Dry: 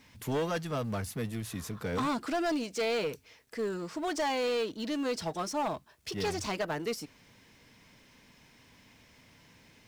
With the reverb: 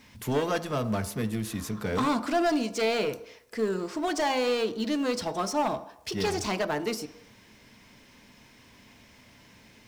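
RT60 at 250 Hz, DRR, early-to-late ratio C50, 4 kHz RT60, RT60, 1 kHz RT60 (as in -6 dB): 0.55 s, 11.0 dB, 15.0 dB, 0.70 s, 0.75 s, 0.80 s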